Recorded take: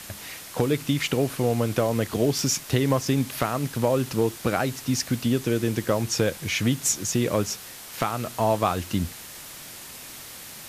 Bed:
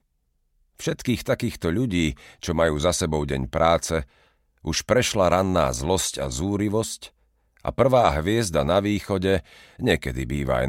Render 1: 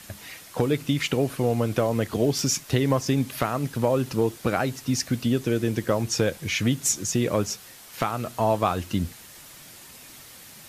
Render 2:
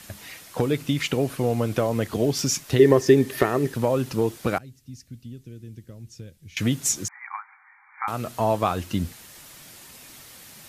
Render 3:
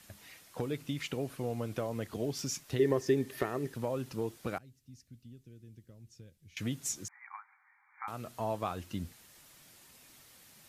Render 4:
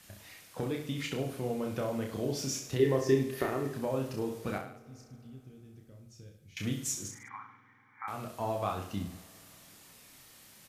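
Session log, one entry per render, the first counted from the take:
broadband denoise 6 dB, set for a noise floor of −41 dBFS
0:02.79–0:03.74: hollow resonant body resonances 390/1,800 Hz, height 17 dB; 0:04.58–0:06.57: guitar amp tone stack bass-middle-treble 10-0-1; 0:07.08–0:08.08: linear-phase brick-wall band-pass 760–2,400 Hz
level −12.5 dB
reverse bouncing-ball delay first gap 30 ms, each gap 1.15×, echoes 5; spring reverb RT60 3.4 s, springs 48 ms, chirp 50 ms, DRR 18.5 dB

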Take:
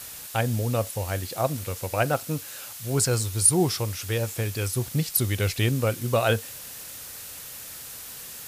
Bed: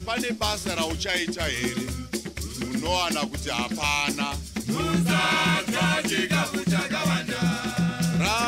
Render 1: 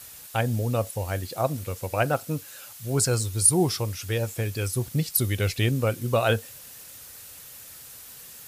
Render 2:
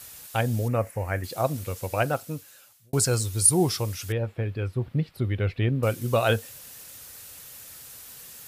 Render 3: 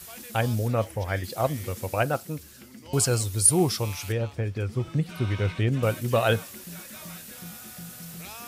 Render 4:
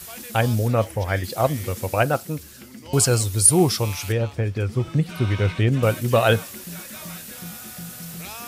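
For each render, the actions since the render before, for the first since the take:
broadband denoise 6 dB, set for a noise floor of −40 dBFS
0:00.68–0:01.24: high shelf with overshoot 2,700 Hz −9 dB, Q 3; 0:01.93–0:02.93: fade out; 0:04.12–0:05.83: high-frequency loss of the air 460 metres
mix in bed −19 dB
level +5 dB; brickwall limiter −3 dBFS, peak gain reduction 1 dB

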